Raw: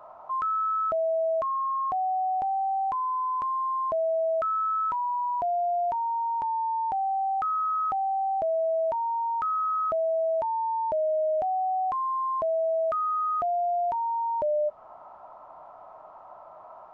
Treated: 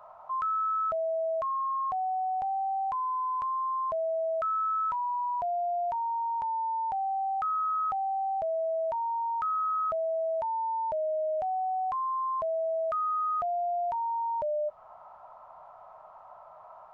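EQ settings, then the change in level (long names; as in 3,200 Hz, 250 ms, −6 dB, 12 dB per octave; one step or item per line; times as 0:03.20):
parametric band 310 Hz −15 dB 0.89 octaves
−1.5 dB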